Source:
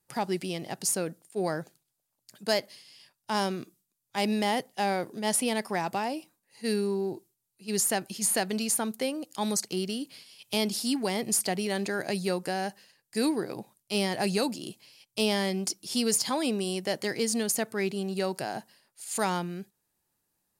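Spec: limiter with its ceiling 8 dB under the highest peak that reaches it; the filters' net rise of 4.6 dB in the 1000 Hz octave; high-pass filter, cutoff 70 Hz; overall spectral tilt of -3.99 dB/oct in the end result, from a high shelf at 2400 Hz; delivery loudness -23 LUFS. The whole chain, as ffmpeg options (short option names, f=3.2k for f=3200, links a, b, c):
-af "highpass=70,equalizer=f=1k:t=o:g=7,highshelf=f=2.4k:g=-5.5,volume=8.5dB,alimiter=limit=-11dB:level=0:latency=1"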